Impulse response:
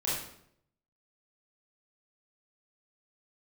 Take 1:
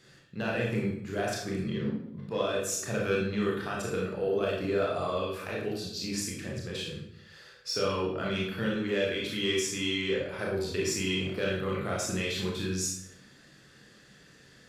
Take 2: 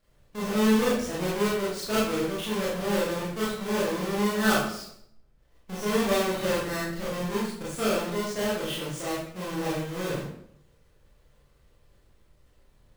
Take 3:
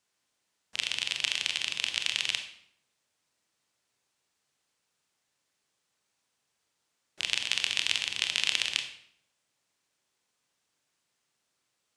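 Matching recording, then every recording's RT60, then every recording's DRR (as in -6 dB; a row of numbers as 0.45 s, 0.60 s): 2; 0.70 s, 0.70 s, 0.70 s; -3.5 dB, -8.0 dB, 5.5 dB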